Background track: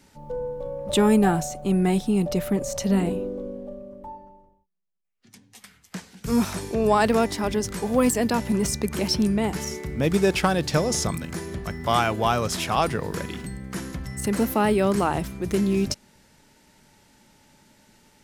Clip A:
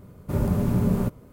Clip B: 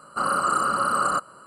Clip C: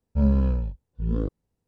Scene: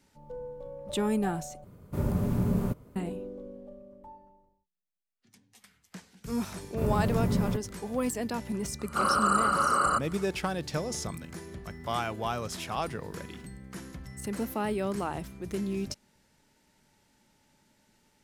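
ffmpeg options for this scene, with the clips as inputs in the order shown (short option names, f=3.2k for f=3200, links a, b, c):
-filter_complex "[1:a]asplit=2[a][b];[0:a]volume=-10dB,asplit=2[c][d];[c]atrim=end=1.644[e];[a]atrim=end=1.32,asetpts=PTS-STARTPTS,volume=-5dB[f];[d]atrim=start=2.956[g];[b]atrim=end=1.32,asetpts=PTS-STARTPTS,volume=-5dB,afade=t=in:d=0.004:c=hsin,afade=t=out:st=1.316:d=0.004:c=hsin,adelay=6480[h];[2:a]atrim=end=1.46,asetpts=PTS-STARTPTS,volume=-2.5dB,afade=t=in:d=0.004:c=hsin,afade=t=out:st=1.456:d=0.004:c=hsin,adelay=8790[i];[e][f]acrossfade=d=0.004:c1=hsin:c2=hsin[j];[j][g]acrossfade=d=0.004:c1=hsin:c2=hsin[k];[k][h][i]amix=inputs=3:normalize=0"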